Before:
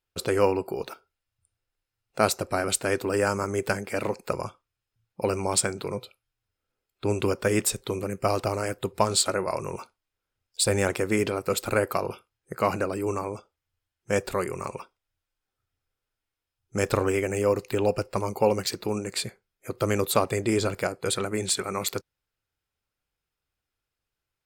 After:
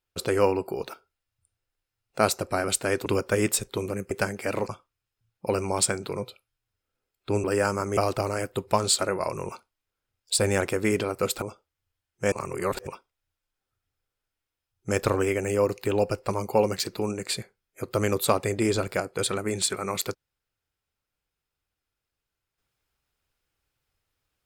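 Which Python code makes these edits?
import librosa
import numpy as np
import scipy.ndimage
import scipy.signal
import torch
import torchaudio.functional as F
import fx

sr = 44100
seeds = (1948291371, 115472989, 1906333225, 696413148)

y = fx.edit(x, sr, fx.swap(start_s=3.06, length_s=0.53, other_s=7.19, other_length_s=1.05),
    fx.cut(start_s=4.17, length_s=0.27),
    fx.cut(start_s=11.69, length_s=1.6),
    fx.reverse_span(start_s=14.19, length_s=0.55), tone=tone)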